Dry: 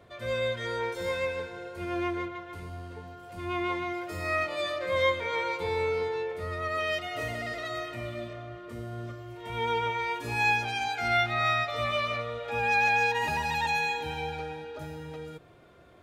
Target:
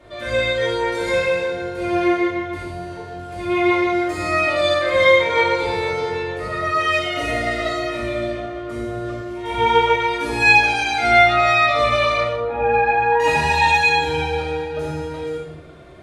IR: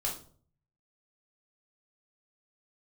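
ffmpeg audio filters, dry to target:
-filter_complex "[0:a]asettb=1/sr,asplit=3[s0][s1][s2];[s0]atrim=end=12.274[s3];[s1]atrim=start=12.27:end=13.2,asetpts=PTS-STARTPTS,afade=t=in:d=0.004:c=qsin,afade=t=out:st=0.926:d=0.004:c=qsin,lowpass=1200[s4];[s2]atrim=start=13.196[s5];[s3][s4]acrossfade=d=0.004:c1=hsin:c2=qsin[s6];[s6][s5]acrossfade=d=0.004:c1=qsin:c2=hsin[s7];[1:a]atrim=start_sample=2205,asetrate=22932,aresample=44100[s8];[s7][s8]afir=irnorm=-1:irlink=0,volume=1.41"

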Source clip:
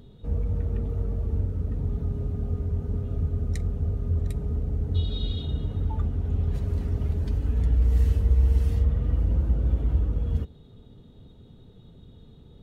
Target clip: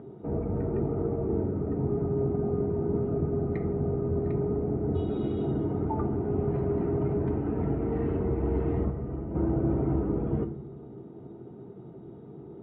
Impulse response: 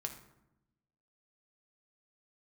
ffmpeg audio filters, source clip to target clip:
-filter_complex "[0:a]asplit=3[s0][s1][s2];[s0]afade=t=out:st=8.85:d=0.02[s3];[s1]agate=range=0.398:threshold=0.112:ratio=16:detection=peak,afade=t=in:st=8.85:d=0.02,afade=t=out:st=9.34:d=0.02[s4];[s2]afade=t=in:st=9.34:d=0.02[s5];[s3][s4][s5]amix=inputs=3:normalize=0,highpass=230,equalizer=f=240:t=q:w=4:g=-4,equalizer=f=340:t=q:w=4:g=10,equalizer=f=510:t=q:w=4:g=-6,equalizer=f=740:t=q:w=4:g=3,equalizer=f=1100:t=q:w=4:g=-3,equalizer=f=1700:t=q:w=4:g=-9,lowpass=f=2000:w=0.5412,lowpass=f=2000:w=1.3066,asplit=2[s6][s7];[1:a]atrim=start_sample=2205,lowpass=2300[s8];[s7][s8]afir=irnorm=-1:irlink=0,volume=1.68[s9];[s6][s9]amix=inputs=2:normalize=0,volume=1.41"

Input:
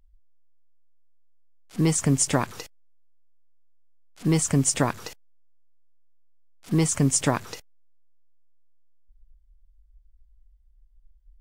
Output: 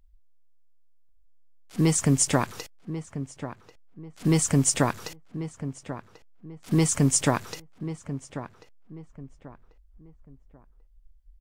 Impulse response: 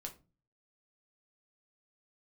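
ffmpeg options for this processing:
-filter_complex "[0:a]asplit=2[s0][s1];[s1]adelay=1090,lowpass=f=1600:p=1,volume=0.266,asplit=2[s2][s3];[s3]adelay=1090,lowpass=f=1600:p=1,volume=0.33,asplit=2[s4][s5];[s5]adelay=1090,lowpass=f=1600:p=1,volume=0.33[s6];[s0][s2][s4][s6]amix=inputs=4:normalize=0"

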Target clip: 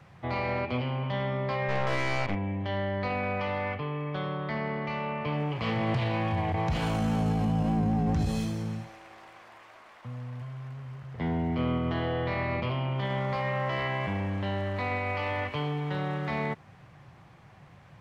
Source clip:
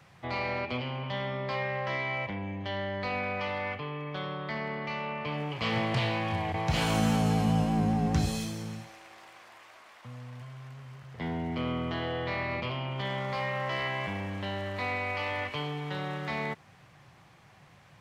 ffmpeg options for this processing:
-filter_complex "[0:a]lowshelf=f=150:g=4.5,alimiter=limit=0.075:level=0:latency=1:release=25,asplit=3[s0][s1][s2];[s0]afade=t=out:st=1.68:d=0.02[s3];[s1]aeval=exprs='0.075*(cos(1*acos(clip(val(0)/0.075,-1,1)))-cos(1*PI/2))+0.0211*(cos(4*acos(clip(val(0)/0.075,-1,1)))-cos(4*PI/2))+0.00376*(cos(8*acos(clip(val(0)/0.075,-1,1)))-cos(8*PI/2))':c=same,afade=t=in:st=1.68:d=0.02,afade=t=out:st=2.34:d=0.02[s4];[s2]afade=t=in:st=2.34:d=0.02[s5];[s3][s4][s5]amix=inputs=3:normalize=0,highshelf=f=2700:g=-9,volume=1.41"

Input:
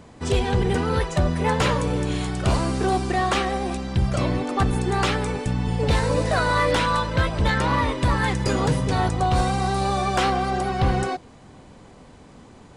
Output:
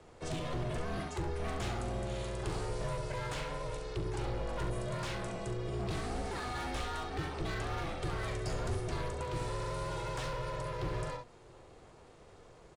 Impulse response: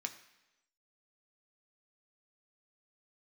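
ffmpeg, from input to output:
-filter_complex "[0:a]highpass=f=85:w=0.5412,highpass=f=85:w=1.3066,aecho=1:1:41|68:0.316|0.355,aeval=exprs='val(0)*sin(2*PI*240*n/s)':c=same,acrossover=split=120|5100[s0][s1][s2];[s1]asoftclip=type=hard:threshold=0.0562[s3];[s0][s3][s2]amix=inputs=3:normalize=0,acrossover=split=150[s4][s5];[s5]acompressor=threshold=0.0224:ratio=2[s6];[s4][s6]amix=inputs=2:normalize=0,volume=0.447"

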